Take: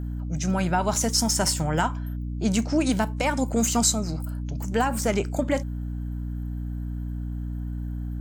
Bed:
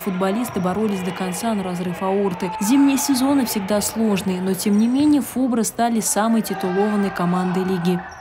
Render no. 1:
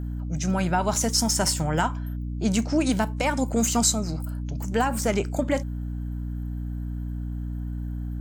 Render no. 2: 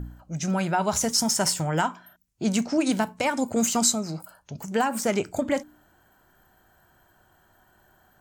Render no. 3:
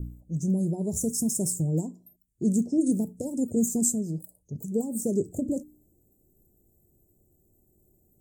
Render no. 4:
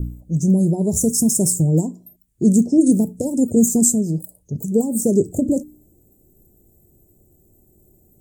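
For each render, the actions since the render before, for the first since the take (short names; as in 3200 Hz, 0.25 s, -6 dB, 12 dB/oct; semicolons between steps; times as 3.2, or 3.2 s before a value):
nothing audible
de-hum 60 Hz, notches 5
elliptic band-stop 430–7900 Hz, stop band 70 dB; dynamic EQ 140 Hz, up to +3 dB, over -40 dBFS, Q 1
gain +10 dB; limiter -3 dBFS, peak gain reduction 1.5 dB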